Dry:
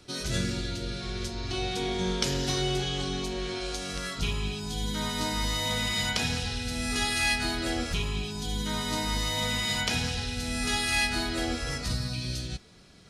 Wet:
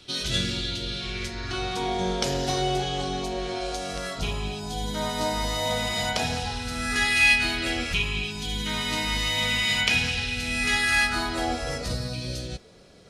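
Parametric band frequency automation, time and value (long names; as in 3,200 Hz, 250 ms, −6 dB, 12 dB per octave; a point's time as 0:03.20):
parametric band +11.5 dB 0.85 octaves
0:00.97 3,300 Hz
0:02.06 670 Hz
0:06.34 670 Hz
0:07.22 2,500 Hz
0:10.57 2,500 Hz
0:11.85 520 Hz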